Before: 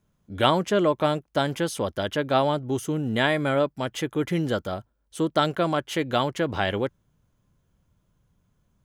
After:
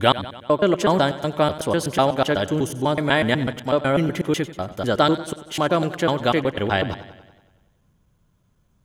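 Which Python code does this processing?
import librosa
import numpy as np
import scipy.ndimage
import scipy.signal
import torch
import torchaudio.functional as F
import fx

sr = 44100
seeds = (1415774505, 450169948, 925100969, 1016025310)

y = fx.block_reorder(x, sr, ms=124.0, group=4)
y = fx.echo_warbled(y, sr, ms=94, feedback_pct=59, rate_hz=2.8, cents=73, wet_db=-15)
y = y * 10.0 ** (4.0 / 20.0)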